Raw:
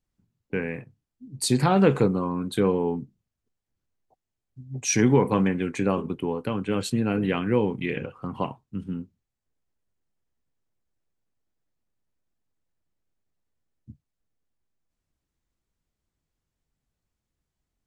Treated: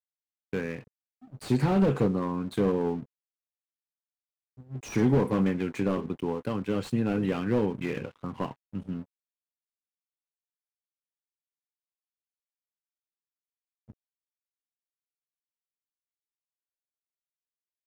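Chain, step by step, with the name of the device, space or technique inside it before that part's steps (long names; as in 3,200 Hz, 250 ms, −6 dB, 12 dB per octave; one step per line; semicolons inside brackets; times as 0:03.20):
early transistor amplifier (dead-zone distortion −48 dBFS; slew-rate limiting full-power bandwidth 49 Hz)
level −2 dB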